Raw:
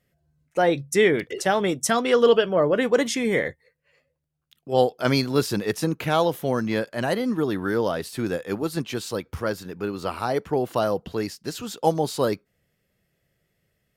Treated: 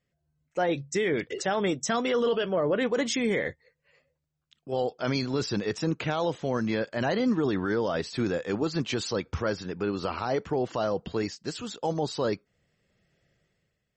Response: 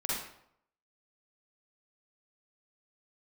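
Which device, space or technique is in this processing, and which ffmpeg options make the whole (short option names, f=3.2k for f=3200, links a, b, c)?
low-bitrate web radio: -af "dynaudnorm=f=140:g=9:m=11.5dB,alimiter=limit=-9.5dB:level=0:latency=1:release=20,volume=-8dB" -ar 44100 -c:a libmp3lame -b:a 32k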